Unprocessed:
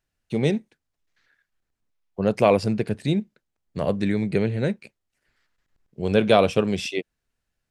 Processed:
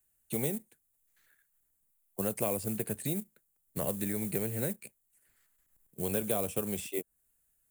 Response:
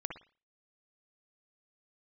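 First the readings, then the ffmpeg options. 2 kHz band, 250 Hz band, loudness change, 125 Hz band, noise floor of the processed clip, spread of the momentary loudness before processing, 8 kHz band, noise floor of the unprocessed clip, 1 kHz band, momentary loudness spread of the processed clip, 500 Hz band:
-14.0 dB, -12.0 dB, -10.5 dB, -12.0 dB, -76 dBFS, 13 LU, n/a, -82 dBFS, -16.5 dB, 12 LU, -13.5 dB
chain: -filter_complex "[0:a]acrossover=split=100|540|1300|6300[a][b][c][d][e];[a]acompressor=threshold=-45dB:ratio=4[f];[b]acompressor=threshold=-30dB:ratio=4[g];[c]acompressor=threshold=-35dB:ratio=4[h];[d]acompressor=threshold=-44dB:ratio=4[i];[e]acompressor=threshold=-58dB:ratio=4[j];[f][g][h][i][j]amix=inputs=5:normalize=0,acrusher=bits=6:mode=log:mix=0:aa=0.000001,aexciter=amount=14:drive=3.2:freq=7.5k,volume=-5dB"

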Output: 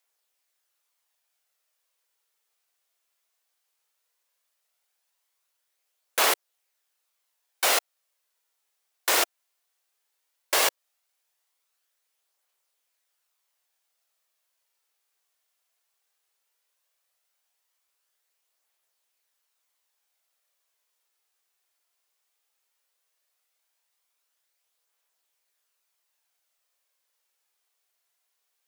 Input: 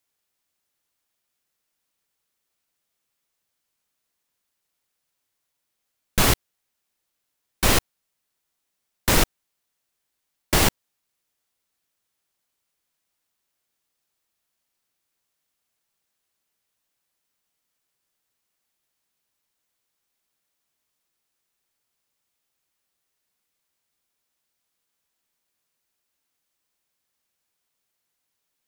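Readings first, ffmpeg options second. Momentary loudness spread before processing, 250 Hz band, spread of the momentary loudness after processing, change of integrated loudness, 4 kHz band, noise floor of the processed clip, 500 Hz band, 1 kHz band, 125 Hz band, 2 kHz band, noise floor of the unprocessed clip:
7 LU, -17.0 dB, 7 LU, -2.5 dB, -1.5 dB, -78 dBFS, -3.5 dB, -1.0 dB, under -40 dB, -1.0 dB, -79 dBFS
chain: -filter_complex "[0:a]highpass=f=460:w=0.5412,highpass=f=460:w=1.3066,asplit=2[a][b];[b]alimiter=limit=-16dB:level=0:latency=1:release=217,volume=1dB[c];[a][c]amix=inputs=2:normalize=0,aphaser=in_gain=1:out_gain=1:delay=3:decay=0.23:speed=0.16:type=triangular,volume=-5.5dB"

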